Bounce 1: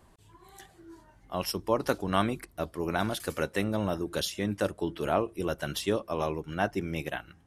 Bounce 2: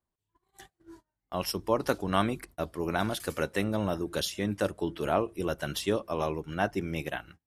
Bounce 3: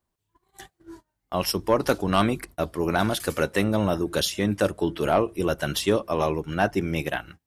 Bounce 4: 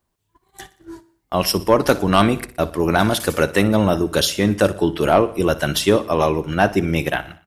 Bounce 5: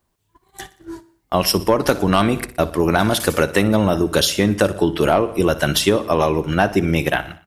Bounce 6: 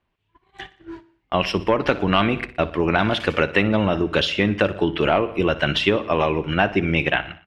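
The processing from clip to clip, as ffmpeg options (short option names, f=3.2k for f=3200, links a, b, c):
-af "agate=range=-29dB:threshold=-50dB:ratio=16:detection=peak"
-af "aeval=exprs='0.316*sin(PI/2*1.41*val(0)/0.316)':c=same"
-af "aecho=1:1:60|120|180|240:0.141|0.072|0.0367|0.0187,volume=6.5dB"
-af "acompressor=threshold=-15dB:ratio=6,volume=3.5dB"
-af "lowpass=f=2.7k:t=q:w=2.4,volume=-3.5dB"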